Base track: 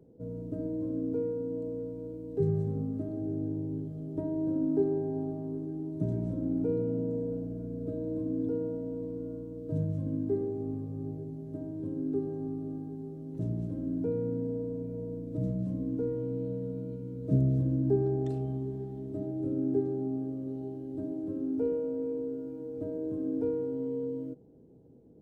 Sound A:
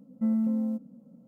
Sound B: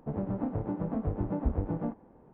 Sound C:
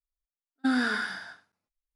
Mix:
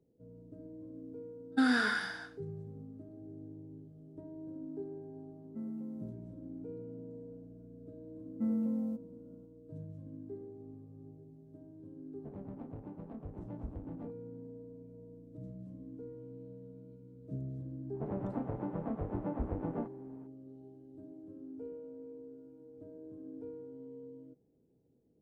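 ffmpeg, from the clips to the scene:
ffmpeg -i bed.wav -i cue0.wav -i cue1.wav -i cue2.wav -filter_complex "[1:a]asplit=2[link_01][link_02];[2:a]asplit=2[link_03][link_04];[0:a]volume=-15dB[link_05];[link_03]adynamicsmooth=sensitivity=5.5:basefreq=1200[link_06];[link_04]lowshelf=frequency=230:gain=-7[link_07];[3:a]atrim=end=1.95,asetpts=PTS-STARTPTS,volume=-2dB,afade=type=in:duration=0.004:curve=hsin,afade=type=out:start_time=1.946:duration=0.004:curve=hsin,adelay=930[link_08];[link_01]atrim=end=1.27,asetpts=PTS-STARTPTS,volume=-15.5dB,afade=type=in:duration=0.004:curve=hsin,afade=type=out:start_time=1.266:duration=0.004:curve=hsin,adelay=5340[link_09];[link_02]atrim=end=1.27,asetpts=PTS-STARTPTS,volume=-6.5dB,afade=type=in:duration=0.004:curve=hsin,afade=type=out:start_time=1.266:duration=0.004:curve=hsin,adelay=8190[link_10];[link_06]atrim=end=2.33,asetpts=PTS-STARTPTS,volume=-14dB,afade=type=in:duration=0.004:curve=hsin,afade=type=out:start_time=2.326:duration=0.004:curve=hsin,adelay=12180[link_11];[link_07]atrim=end=2.33,asetpts=PTS-STARTPTS,volume=-2dB,afade=type=in:duration=0.004:curve=hsin,afade=type=out:start_time=2.326:duration=0.004:curve=hsin,adelay=17940[link_12];[link_05][link_08][link_09][link_10][link_11][link_12]amix=inputs=6:normalize=0" out.wav

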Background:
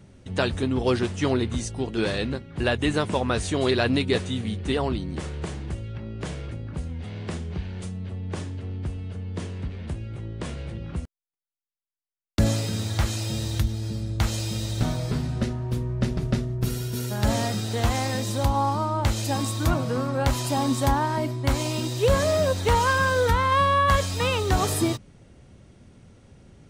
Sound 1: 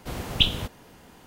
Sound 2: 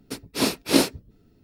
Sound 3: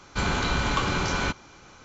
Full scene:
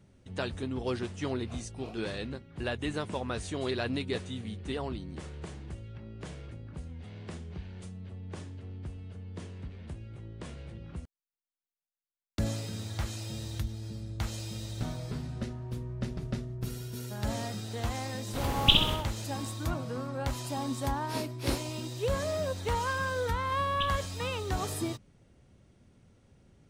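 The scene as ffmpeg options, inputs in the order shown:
ffmpeg -i bed.wav -i cue0.wav -i cue1.wav -filter_complex "[2:a]asplit=2[link_01][link_02];[1:a]asplit=2[link_03][link_04];[0:a]volume=-10dB[link_05];[link_01]asplit=3[link_06][link_07][link_08];[link_06]bandpass=frequency=730:width_type=q:width=8,volume=0dB[link_09];[link_07]bandpass=frequency=1090:width_type=q:width=8,volume=-6dB[link_10];[link_08]bandpass=frequency=2440:width_type=q:width=8,volume=-9dB[link_11];[link_09][link_10][link_11]amix=inputs=3:normalize=0[link_12];[link_03]aecho=1:1:64|128|192|256|320:0.631|0.271|0.117|0.0502|0.0216[link_13];[link_12]atrim=end=1.43,asetpts=PTS-STARTPTS,volume=-15dB,afade=type=in:duration=0.004:curve=hsin,afade=type=out:start_time=1.426:duration=0.004:curve=hsin,adelay=1100[link_14];[link_13]atrim=end=1.26,asetpts=PTS-STARTPTS,volume=-1.5dB,afade=type=in:duration=0.004:curve=hsin,afade=type=out:start_time=1.256:duration=0.004:curve=hsin,adelay=806148S[link_15];[link_02]atrim=end=1.43,asetpts=PTS-STARTPTS,volume=-15dB,afade=type=in:duration=0.004:curve=hsin,afade=type=out:start_time=1.426:duration=0.004:curve=hsin,adelay=20730[link_16];[link_04]atrim=end=1.26,asetpts=PTS-STARTPTS,volume=-16dB,afade=type=in:duration=0.004:curve=hsin,afade=type=out:start_time=1.256:duration=0.004:curve=hsin,adelay=1031940S[link_17];[link_05][link_14][link_15][link_16][link_17]amix=inputs=5:normalize=0" out.wav

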